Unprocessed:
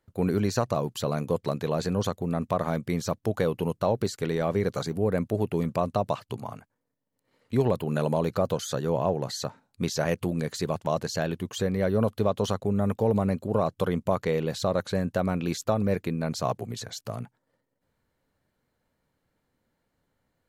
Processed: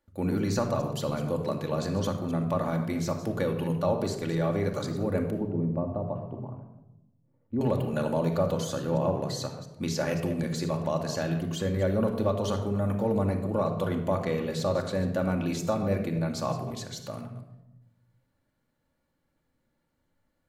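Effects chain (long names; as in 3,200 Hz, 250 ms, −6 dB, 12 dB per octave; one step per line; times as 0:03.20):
delay that plays each chunk backwards 136 ms, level −13 dB
0:05.30–0:07.61: Bessel low-pass filter 540 Hz, order 2
rectangular room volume 3,300 cubic metres, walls furnished, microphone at 2.4 metres
level −4 dB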